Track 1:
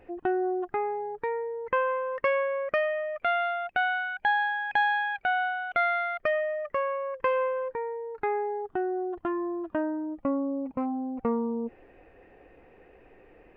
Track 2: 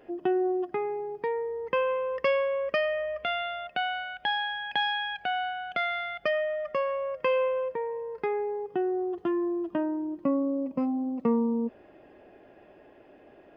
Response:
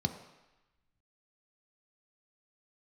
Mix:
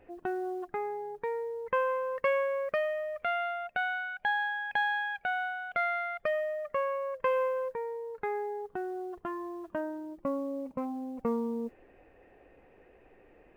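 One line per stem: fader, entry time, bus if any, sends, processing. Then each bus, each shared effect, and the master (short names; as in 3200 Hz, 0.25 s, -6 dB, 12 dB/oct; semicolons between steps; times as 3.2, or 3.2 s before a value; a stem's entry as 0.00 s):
-4.5 dB, 0.00 s, no send, dry
-14.0 dB, 0.00 s, no send, modulation noise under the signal 20 dB; high shelf 2200 Hz -9.5 dB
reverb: off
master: dry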